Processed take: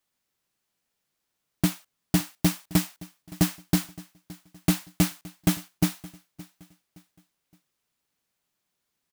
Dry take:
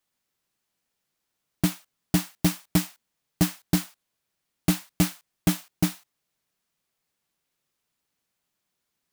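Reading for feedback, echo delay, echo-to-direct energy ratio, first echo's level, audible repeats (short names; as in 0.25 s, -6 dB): 36%, 0.568 s, -20.0 dB, -20.5 dB, 2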